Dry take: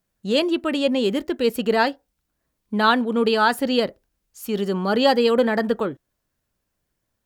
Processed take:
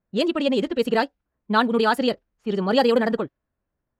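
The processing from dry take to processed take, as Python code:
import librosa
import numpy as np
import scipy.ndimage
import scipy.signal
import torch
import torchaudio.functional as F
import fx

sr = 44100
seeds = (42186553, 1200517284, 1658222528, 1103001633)

y = fx.env_lowpass(x, sr, base_hz=1500.0, full_db=-14.5)
y = fx.stretch_vocoder(y, sr, factor=0.55)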